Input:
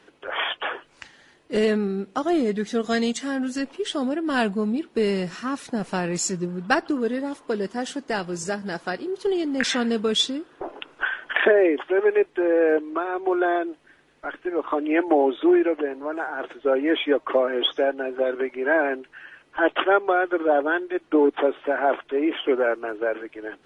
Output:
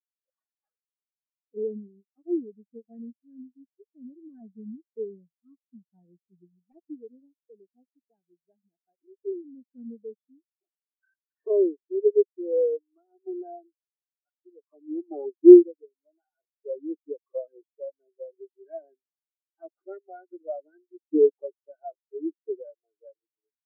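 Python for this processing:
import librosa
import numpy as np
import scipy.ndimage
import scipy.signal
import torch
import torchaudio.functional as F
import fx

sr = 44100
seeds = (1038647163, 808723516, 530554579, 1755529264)

y = fx.self_delay(x, sr, depth_ms=0.4)
y = scipy.signal.sosfilt(scipy.signal.butter(2, 1900.0, 'lowpass', fs=sr, output='sos'), y)
y = fx.spectral_expand(y, sr, expansion=4.0)
y = F.gain(torch.from_numpy(y), 5.5).numpy()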